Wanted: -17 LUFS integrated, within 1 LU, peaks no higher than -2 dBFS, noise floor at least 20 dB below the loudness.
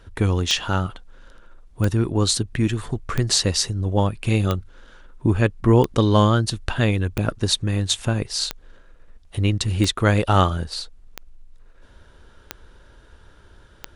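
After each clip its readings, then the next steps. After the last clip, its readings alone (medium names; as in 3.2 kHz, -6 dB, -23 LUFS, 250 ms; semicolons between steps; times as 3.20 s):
clicks found 11; loudness -21.5 LUFS; peak level -3.0 dBFS; loudness target -17.0 LUFS
-> de-click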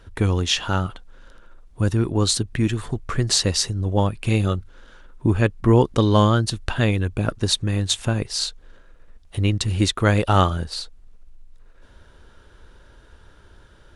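clicks found 0; loudness -21.5 LUFS; peak level -3.0 dBFS; loudness target -17.0 LUFS
-> trim +4.5 dB; peak limiter -2 dBFS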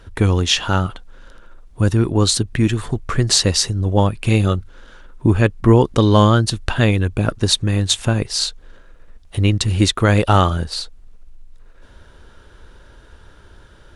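loudness -17.0 LUFS; peak level -2.0 dBFS; noise floor -46 dBFS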